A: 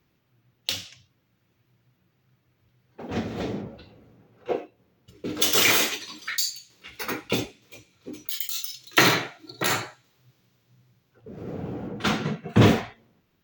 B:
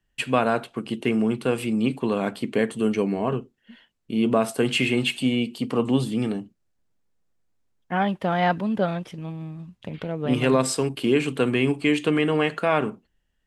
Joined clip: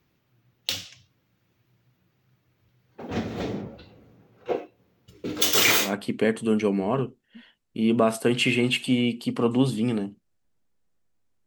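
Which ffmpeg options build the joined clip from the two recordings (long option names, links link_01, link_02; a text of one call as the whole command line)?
ffmpeg -i cue0.wav -i cue1.wav -filter_complex "[0:a]apad=whole_dur=11.46,atrim=end=11.46,atrim=end=5.94,asetpts=PTS-STARTPTS[link_01];[1:a]atrim=start=2.12:end=7.8,asetpts=PTS-STARTPTS[link_02];[link_01][link_02]acrossfade=duration=0.16:curve1=tri:curve2=tri" out.wav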